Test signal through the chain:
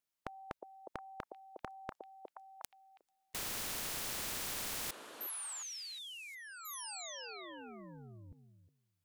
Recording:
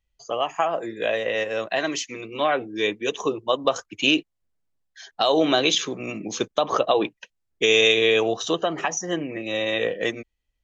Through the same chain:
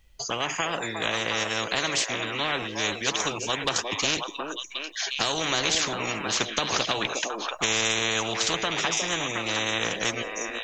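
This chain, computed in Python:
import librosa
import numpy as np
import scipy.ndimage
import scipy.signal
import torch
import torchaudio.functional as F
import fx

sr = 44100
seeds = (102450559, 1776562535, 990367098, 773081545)

y = fx.echo_stepped(x, sr, ms=360, hz=460.0, octaves=1.4, feedback_pct=70, wet_db=-9)
y = fx.spectral_comp(y, sr, ratio=4.0)
y = F.gain(torch.from_numpy(y), -1.0).numpy()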